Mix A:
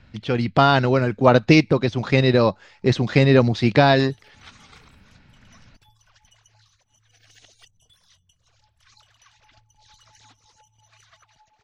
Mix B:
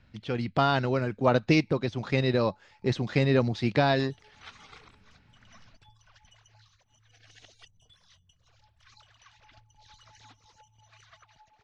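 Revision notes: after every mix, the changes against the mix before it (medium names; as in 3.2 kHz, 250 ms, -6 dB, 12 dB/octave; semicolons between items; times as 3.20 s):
speech -8.5 dB; background: add distance through air 87 m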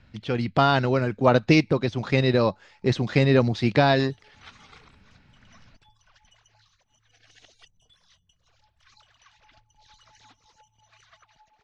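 speech +4.5 dB; background: add peaking EQ 100 Hz -7 dB 0.68 oct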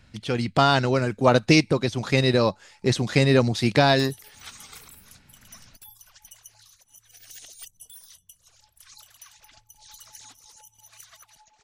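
background: remove distance through air 87 m; master: remove distance through air 160 m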